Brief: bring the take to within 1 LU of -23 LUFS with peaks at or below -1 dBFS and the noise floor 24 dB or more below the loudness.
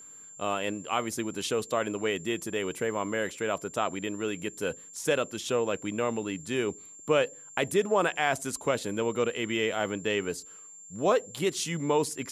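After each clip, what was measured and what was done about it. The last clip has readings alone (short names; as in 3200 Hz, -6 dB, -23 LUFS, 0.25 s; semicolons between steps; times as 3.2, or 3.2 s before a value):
steady tone 7300 Hz; tone level -46 dBFS; loudness -30.0 LUFS; peak -11.0 dBFS; loudness target -23.0 LUFS
-> notch 7300 Hz, Q 30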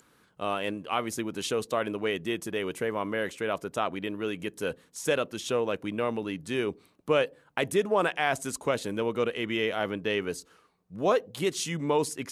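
steady tone none; loudness -30.0 LUFS; peak -11.0 dBFS; loudness target -23.0 LUFS
-> gain +7 dB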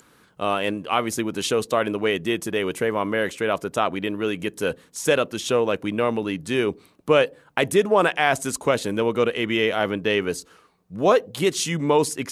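loudness -23.0 LUFS; peak -4.0 dBFS; noise floor -58 dBFS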